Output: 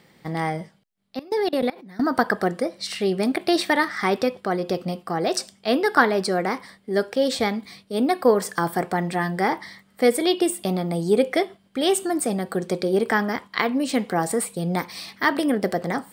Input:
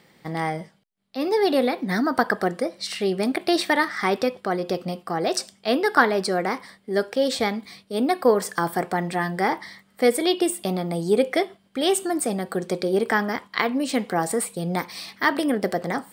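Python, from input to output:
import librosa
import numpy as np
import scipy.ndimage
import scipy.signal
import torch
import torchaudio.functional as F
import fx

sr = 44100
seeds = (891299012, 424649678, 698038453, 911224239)

y = fx.level_steps(x, sr, step_db=22, at=(1.19, 2.0))
y = fx.low_shelf(y, sr, hz=210.0, db=3.5)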